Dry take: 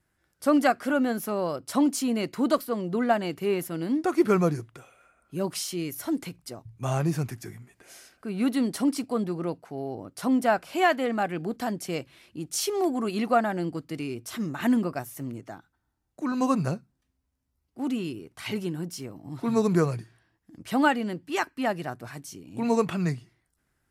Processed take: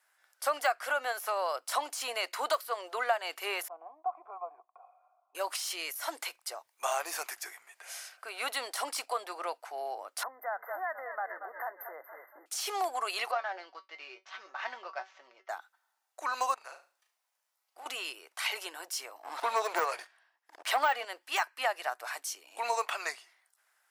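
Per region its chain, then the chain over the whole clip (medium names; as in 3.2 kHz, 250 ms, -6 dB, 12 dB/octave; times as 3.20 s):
3.68–5.35 s: compression 4:1, threshold -26 dBFS + cascade formant filter a + peaking EQ 190 Hz +13.5 dB 2.5 oct
6.67–7.36 s: brick-wall FIR high-pass 150 Hz + treble shelf 10 kHz +7.5 dB
10.23–12.46 s: frequency-shifting echo 233 ms, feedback 45%, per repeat -43 Hz, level -14.5 dB + compression 8:1, threshold -34 dBFS + brick-wall FIR band-stop 2.1–12 kHz
13.31–15.49 s: median filter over 9 samples + steep low-pass 5.9 kHz 48 dB/octave + feedback comb 190 Hz, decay 0.16 s, mix 80%
16.54–17.86 s: dynamic bell 2.2 kHz, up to +5 dB, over -48 dBFS, Q 0.72 + compression, threshold -41 dBFS + flutter echo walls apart 6.3 m, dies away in 0.32 s
19.23–21.05 s: waveshaping leveller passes 2 + treble shelf 5.1 kHz -7.5 dB
whole clip: de-esser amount 75%; inverse Chebyshev high-pass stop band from 200 Hz, stop band 60 dB; compression 2.5:1, threshold -35 dBFS; trim +6 dB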